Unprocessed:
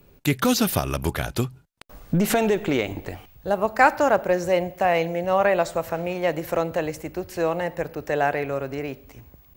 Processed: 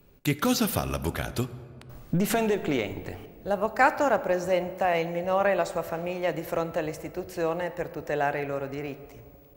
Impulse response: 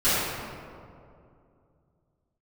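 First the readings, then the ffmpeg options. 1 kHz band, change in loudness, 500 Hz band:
-4.0 dB, -4.0 dB, -4.0 dB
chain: -filter_complex "[0:a]asplit=2[a][b];[1:a]atrim=start_sample=2205[c];[b][c]afir=irnorm=-1:irlink=0,volume=-31dB[d];[a][d]amix=inputs=2:normalize=0,volume=-4.5dB"

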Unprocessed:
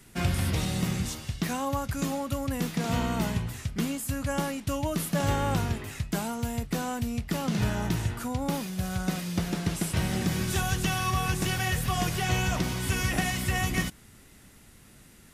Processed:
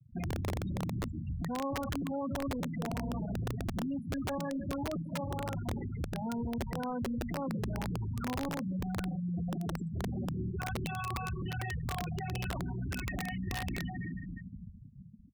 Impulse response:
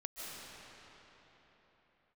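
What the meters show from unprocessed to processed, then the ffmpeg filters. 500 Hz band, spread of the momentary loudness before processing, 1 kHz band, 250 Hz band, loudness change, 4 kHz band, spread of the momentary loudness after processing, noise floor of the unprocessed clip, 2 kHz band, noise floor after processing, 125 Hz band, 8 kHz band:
-6.0 dB, 5 LU, -7.5 dB, -5.0 dB, -7.5 dB, -12.5 dB, 3 LU, -54 dBFS, -10.0 dB, -49 dBFS, -7.0 dB, -15.5 dB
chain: -filter_complex "[0:a]asplit=2[a][b];[b]adelay=279.9,volume=-20dB,highshelf=f=4k:g=-6.3[c];[a][c]amix=inputs=2:normalize=0,asplit=2[d][e];[1:a]atrim=start_sample=2205,asetrate=70560,aresample=44100[f];[e][f]afir=irnorm=-1:irlink=0,volume=-6dB[g];[d][g]amix=inputs=2:normalize=0,alimiter=limit=-23dB:level=0:latency=1:release=125,highpass=43,asplit=2[h][i];[i]acompressor=threshold=-43dB:ratio=8,volume=-1dB[j];[h][j]amix=inputs=2:normalize=0,asoftclip=type=tanh:threshold=-36dB,equalizer=f=73:t=o:w=0.38:g=2.5,afftfilt=real='re*gte(hypot(re,im),0.0316)':imag='im*gte(hypot(re,im),0.0316)':win_size=1024:overlap=0.75,adynamicequalizer=threshold=0.00224:dfrequency=810:dqfactor=1.8:tfrequency=810:tqfactor=1.8:attack=5:release=100:ratio=0.375:range=2:mode=cutabove:tftype=bell,lowpass=2.9k,bandreject=f=50:t=h:w=6,bandreject=f=100:t=h:w=6,bandreject=f=150:t=h:w=6,bandreject=f=200:t=h:w=6,aeval=exprs='(mod(47.3*val(0)+1,2)-1)/47.3':c=same,volume=4.5dB"

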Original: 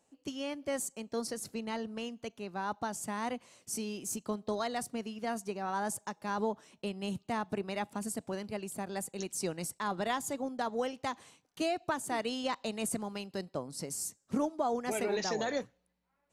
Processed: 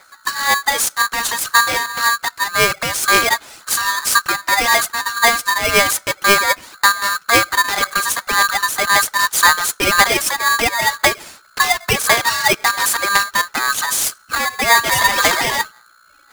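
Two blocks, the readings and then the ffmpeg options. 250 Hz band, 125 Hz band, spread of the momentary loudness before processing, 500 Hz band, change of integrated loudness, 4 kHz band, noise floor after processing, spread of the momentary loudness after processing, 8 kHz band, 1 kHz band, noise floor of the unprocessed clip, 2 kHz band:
+5.0 dB, +12.0 dB, 7 LU, +12.0 dB, +21.0 dB, +26.0 dB, -50 dBFS, 6 LU, +22.0 dB, +20.5 dB, -77 dBFS, +29.0 dB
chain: -af "apsyclip=31dB,adynamicequalizer=threshold=0.0447:dfrequency=150:dqfactor=2.4:tfrequency=150:tqfactor=2.4:attack=5:release=100:ratio=0.375:range=2.5:mode=boostabove:tftype=bell,aphaser=in_gain=1:out_gain=1:delay=2.7:decay=0.65:speed=1.9:type=sinusoidal,aeval=exprs='val(0)+0.0141*(sin(2*PI*60*n/s)+sin(2*PI*2*60*n/s)/2+sin(2*PI*3*60*n/s)/3+sin(2*PI*4*60*n/s)/4+sin(2*PI*5*60*n/s)/5)':c=same,aeval=exprs='val(0)*sgn(sin(2*PI*1400*n/s))':c=same,volume=-13dB"

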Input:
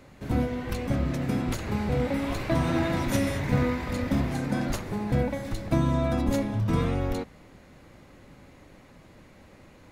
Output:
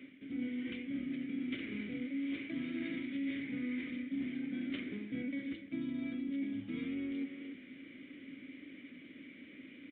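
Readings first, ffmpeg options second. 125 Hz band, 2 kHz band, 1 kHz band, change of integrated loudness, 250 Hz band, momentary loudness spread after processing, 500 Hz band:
-26.5 dB, -9.0 dB, under -30 dB, -12.0 dB, -8.5 dB, 13 LU, -20.5 dB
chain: -filter_complex "[0:a]asplit=3[a][b][c];[a]bandpass=f=270:t=q:w=8,volume=0dB[d];[b]bandpass=f=2.29k:t=q:w=8,volume=-6dB[e];[c]bandpass=f=3.01k:t=q:w=8,volume=-9dB[f];[d][e][f]amix=inputs=3:normalize=0,lowshelf=f=230:g=-11,asplit=2[g][h];[h]adelay=300,highpass=300,lowpass=3.4k,asoftclip=type=hard:threshold=-35.5dB,volume=-18dB[i];[g][i]amix=inputs=2:normalize=0,areverse,acompressor=threshold=-53dB:ratio=5,areverse,aresample=8000,aresample=44100,volume=15dB"

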